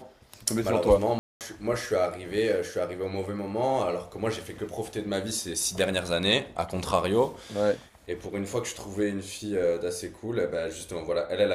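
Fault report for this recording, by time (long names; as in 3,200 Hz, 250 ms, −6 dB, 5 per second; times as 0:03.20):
0:01.19–0:01.41: drop-out 218 ms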